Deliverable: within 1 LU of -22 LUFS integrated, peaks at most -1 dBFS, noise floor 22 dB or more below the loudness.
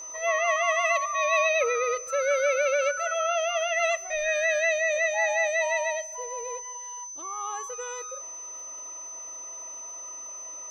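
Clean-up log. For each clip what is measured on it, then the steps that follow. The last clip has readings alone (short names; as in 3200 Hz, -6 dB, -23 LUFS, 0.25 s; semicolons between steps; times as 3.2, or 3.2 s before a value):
ticks 45/s; steady tone 6100 Hz; tone level -37 dBFS; loudness -27.0 LUFS; peak -12.5 dBFS; loudness target -22.0 LUFS
-> de-click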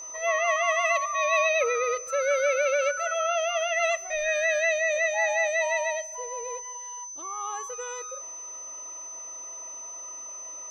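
ticks 0.19/s; steady tone 6100 Hz; tone level -37 dBFS
-> notch 6100 Hz, Q 30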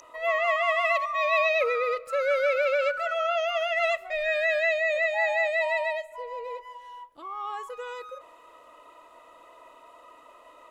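steady tone none; loudness -25.5 LUFS; peak -12.5 dBFS; loudness target -22.0 LUFS
-> gain +3.5 dB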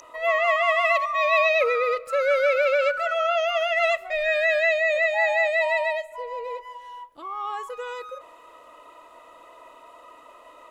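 loudness -22.0 LUFS; peak -9.0 dBFS; noise floor -50 dBFS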